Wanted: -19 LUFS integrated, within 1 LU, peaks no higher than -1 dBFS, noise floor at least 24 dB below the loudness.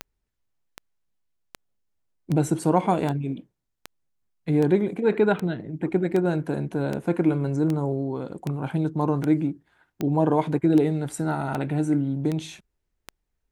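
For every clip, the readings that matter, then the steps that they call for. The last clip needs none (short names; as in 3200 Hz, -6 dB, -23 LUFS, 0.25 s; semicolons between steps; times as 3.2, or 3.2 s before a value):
clicks 18; loudness -24.5 LUFS; peak -7.5 dBFS; loudness target -19.0 LUFS
-> de-click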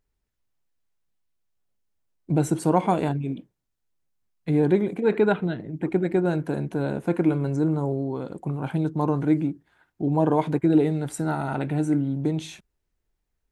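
clicks 0; loudness -24.5 LUFS; peak -7.5 dBFS; loudness target -19.0 LUFS
-> gain +5.5 dB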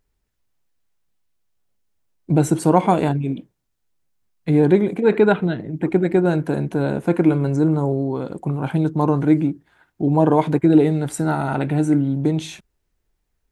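loudness -19.0 LUFS; peak -2.0 dBFS; noise floor -73 dBFS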